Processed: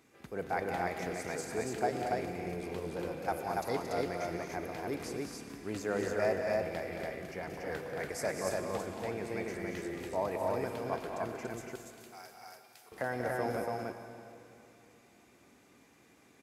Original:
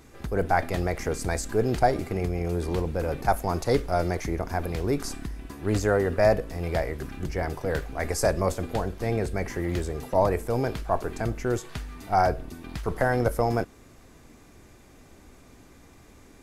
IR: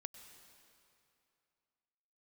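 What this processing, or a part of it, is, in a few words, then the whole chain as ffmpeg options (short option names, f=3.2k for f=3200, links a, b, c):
stadium PA: -filter_complex "[0:a]asettb=1/sr,asplit=3[a][b][c];[a]atrim=end=11.474[d];[b]atrim=start=11.47:end=12.92,asetpts=PTS-STARTPTS,afade=t=in:d=0.004:c=qsin,afade=t=out:st=1.446:d=0.004:c=qsin,aderivative[e];[c]atrim=start=12.916[f];[d][e]acrossfade=d=0.004:c1=hsin:c2=qsin[g];[g][f]acrossfade=d=0.004:c1=qsin:c2=hsin,highpass=160,equalizer=f=2.4k:t=o:w=0.67:g=4.5,aecho=1:1:183.7|224.5|285.7:0.282|0.447|0.794[h];[1:a]atrim=start_sample=2205[i];[h][i]afir=irnorm=-1:irlink=0,volume=-6.5dB"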